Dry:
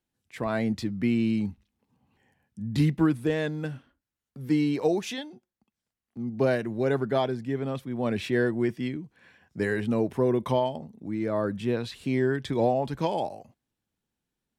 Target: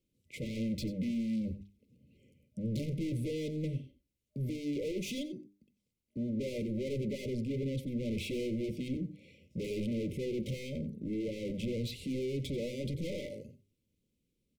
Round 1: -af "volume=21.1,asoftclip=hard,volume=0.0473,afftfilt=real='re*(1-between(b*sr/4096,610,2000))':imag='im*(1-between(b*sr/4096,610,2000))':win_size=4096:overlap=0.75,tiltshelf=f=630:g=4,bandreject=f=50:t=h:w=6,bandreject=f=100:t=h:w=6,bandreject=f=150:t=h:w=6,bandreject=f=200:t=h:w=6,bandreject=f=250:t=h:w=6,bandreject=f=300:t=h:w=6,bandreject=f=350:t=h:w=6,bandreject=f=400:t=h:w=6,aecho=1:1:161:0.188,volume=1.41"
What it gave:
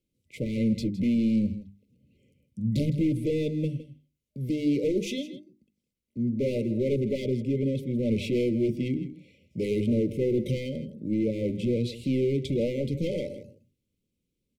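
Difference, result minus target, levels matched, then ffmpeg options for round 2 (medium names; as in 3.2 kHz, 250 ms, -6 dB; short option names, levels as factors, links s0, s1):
echo 71 ms late; overload inside the chain: distortion -5 dB
-af "volume=79.4,asoftclip=hard,volume=0.0126,afftfilt=real='re*(1-between(b*sr/4096,610,2000))':imag='im*(1-between(b*sr/4096,610,2000))':win_size=4096:overlap=0.75,tiltshelf=f=630:g=4,bandreject=f=50:t=h:w=6,bandreject=f=100:t=h:w=6,bandreject=f=150:t=h:w=6,bandreject=f=200:t=h:w=6,bandreject=f=250:t=h:w=6,bandreject=f=300:t=h:w=6,bandreject=f=350:t=h:w=6,bandreject=f=400:t=h:w=6,aecho=1:1:90:0.188,volume=1.41"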